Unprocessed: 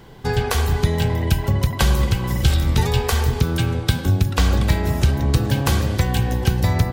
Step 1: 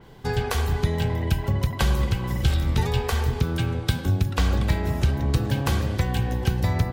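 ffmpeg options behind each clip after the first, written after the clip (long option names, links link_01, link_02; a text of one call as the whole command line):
ffmpeg -i in.wav -af "adynamicequalizer=threshold=0.00891:dfrequency=4100:dqfactor=0.7:tfrequency=4100:tqfactor=0.7:attack=5:release=100:ratio=0.375:range=2.5:mode=cutabove:tftype=highshelf,volume=-4.5dB" out.wav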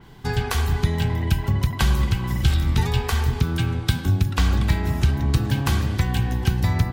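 ffmpeg -i in.wav -af "equalizer=frequency=530:width_type=o:width=0.61:gain=-10,volume=2.5dB" out.wav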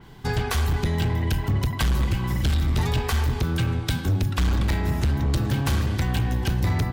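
ffmpeg -i in.wav -af "volume=18dB,asoftclip=hard,volume=-18dB" out.wav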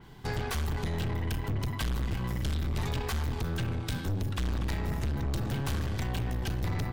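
ffmpeg -i in.wav -af "aeval=exprs='(tanh(17.8*val(0)+0.4)-tanh(0.4))/17.8':channel_layout=same,volume=-3dB" out.wav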